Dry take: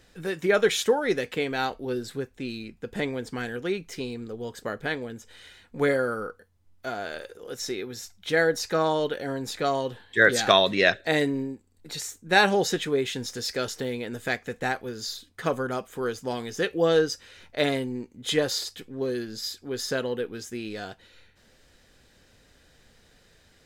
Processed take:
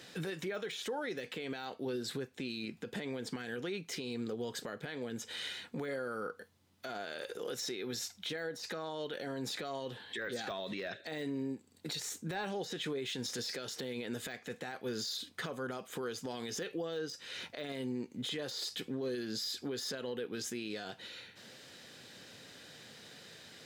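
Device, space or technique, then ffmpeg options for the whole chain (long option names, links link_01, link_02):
broadcast voice chain: -af "highpass=frequency=120:width=0.5412,highpass=frequency=120:width=1.3066,deesser=0.8,acompressor=threshold=-39dB:ratio=4,equalizer=frequency=3700:width_type=o:width=1.2:gain=5,alimiter=level_in=11dB:limit=-24dB:level=0:latency=1:release=40,volume=-11dB,volume=5dB"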